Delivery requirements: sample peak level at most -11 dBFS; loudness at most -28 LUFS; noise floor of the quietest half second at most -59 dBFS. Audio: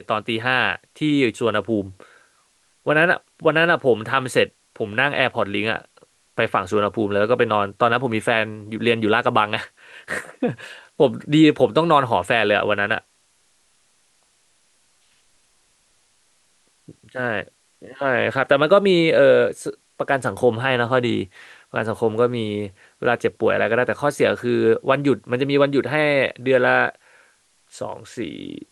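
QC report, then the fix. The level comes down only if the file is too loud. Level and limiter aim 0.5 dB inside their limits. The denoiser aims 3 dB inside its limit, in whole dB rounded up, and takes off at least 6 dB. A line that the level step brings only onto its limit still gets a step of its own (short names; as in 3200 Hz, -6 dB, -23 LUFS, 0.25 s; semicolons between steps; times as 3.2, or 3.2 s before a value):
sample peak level -3.0 dBFS: fail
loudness -20.0 LUFS: fail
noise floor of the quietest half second -62 dBFS: OK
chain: gain -8.5 dB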